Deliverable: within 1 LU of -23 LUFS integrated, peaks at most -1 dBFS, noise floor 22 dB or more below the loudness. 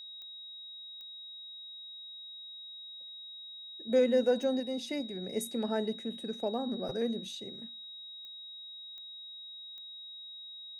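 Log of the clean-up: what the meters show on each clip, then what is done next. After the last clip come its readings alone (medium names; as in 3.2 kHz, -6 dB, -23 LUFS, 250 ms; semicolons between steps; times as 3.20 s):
clicks found 6; steady tone 3.8 kHz; tone level -44 dBFS; loudness -36.5 LUFS; peak level -17.0 dBFS; loudness target -23.0 LUFS
-> de-click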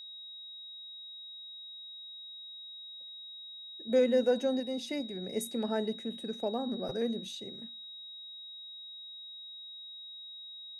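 clicks found 0; steady tone 3.8 kHz; tone level -44 dBFS
-> band-stop 3.8 kHz, Q 30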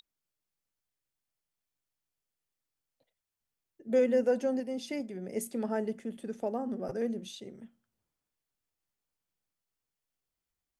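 steady tone not found; loudness -32.5 LUFS; peak level -17.0 dBFS; loudness target -23.0 LUFS
-> trim +9.5 dB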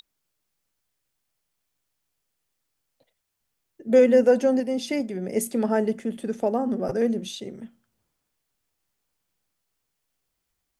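loudness -23.0 LUFS; peak level -7.5 dBFS; noise floor -79 dBFS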